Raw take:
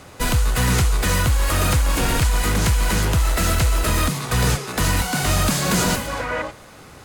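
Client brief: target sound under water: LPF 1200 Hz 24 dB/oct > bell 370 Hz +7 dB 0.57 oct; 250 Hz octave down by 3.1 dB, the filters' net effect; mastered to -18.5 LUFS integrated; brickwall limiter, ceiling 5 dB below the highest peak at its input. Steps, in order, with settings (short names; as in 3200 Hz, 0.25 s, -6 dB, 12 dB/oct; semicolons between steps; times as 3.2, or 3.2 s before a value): bell 250 Hz -7.5 dB; limiter -15.5 dBFS; LPF 1200 Hz 24 dB/oct; bell 370 Hz +7 dB 0.57 oct; gain +7.5 dB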